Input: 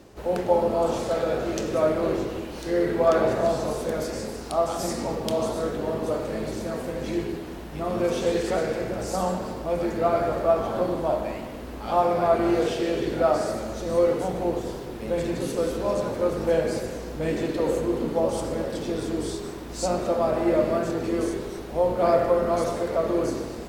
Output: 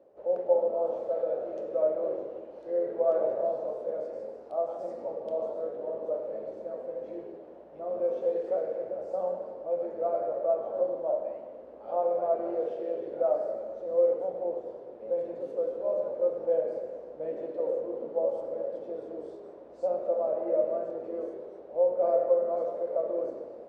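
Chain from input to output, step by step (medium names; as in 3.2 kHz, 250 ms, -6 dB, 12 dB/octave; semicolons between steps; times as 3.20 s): band-pass filter 560 Hz, Q 5.2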